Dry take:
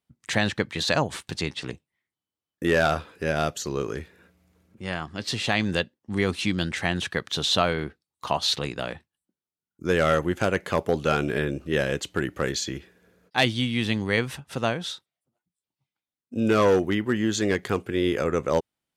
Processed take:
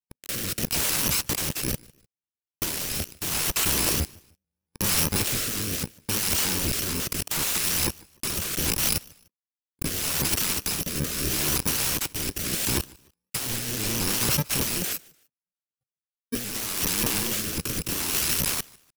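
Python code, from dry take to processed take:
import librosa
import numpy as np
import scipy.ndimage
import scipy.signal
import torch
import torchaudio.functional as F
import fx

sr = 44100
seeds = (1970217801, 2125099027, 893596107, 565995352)

y = fx.bit_reversed(x, sr, seeds[0], block=64)
y = fx.lowpass(y, sr, hz=11000.0, slope=12, at=(13.73, 14.16))
y = fx.leveller(y, sr, passes=5)
y = fx.level_steps(y, sr, step_db=17)
y = fx.leveller(y, sr, passes=2)
y = (np.mod(10.0 ** (18.5 / 20.0) * y + 1.0, 2.0) - 1.0) / 10.0 ** (18.5 / 20.0)
y = fx.rotary(y, sr, hz=0.75)
y = fx.echo_feedback(y, sr, ms=150, feedback_pct=32, wet_db=-24.0)
y = fx.vibrato_shape(y, sr, shape='saw_up', rate_hz=4.5, depth_cents=160.0)
y = F.gain(torch.from_numpy(y), 4.5).numpy()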